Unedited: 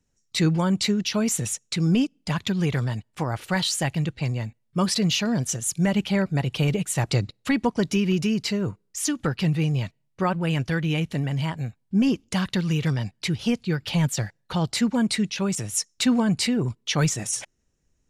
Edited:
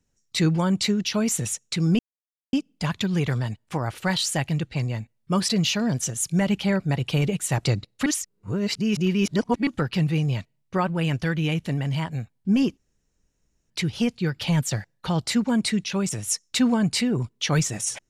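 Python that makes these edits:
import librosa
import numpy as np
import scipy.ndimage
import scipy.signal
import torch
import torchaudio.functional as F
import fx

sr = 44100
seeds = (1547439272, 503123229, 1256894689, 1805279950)

y = fx.edit(x, sr, fx.insert_silence(at_s=1.99, length_s=0.54),
    fx.reverse_span(start_s=7.52, length_s=1.61),
    fx.room_tone_fill(start_s=12.23, length_s=0.93), tone=tone)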